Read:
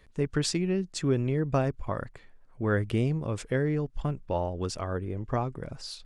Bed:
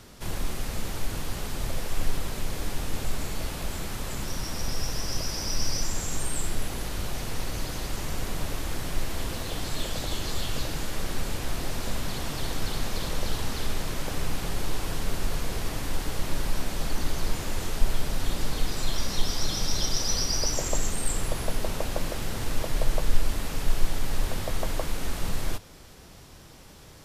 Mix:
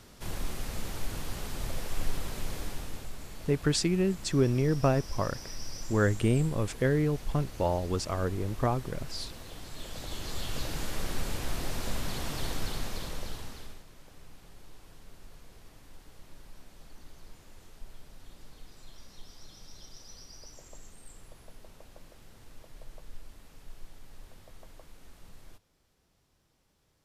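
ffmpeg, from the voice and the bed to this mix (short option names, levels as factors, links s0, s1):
-filter_complex "[0:a]adelay=3300,volume=1.12[s0];[1:a]volume=1.78,afade=t=out:st=2.52:d=0.58:silence=0.398107,afade=t=in:st=9.73:d=1.11:silence=0.334965,afade=t=out:st=12.46:d=1.38:silence=0.1[s1];[s0][s1]amix=inputs=2:normalize=0"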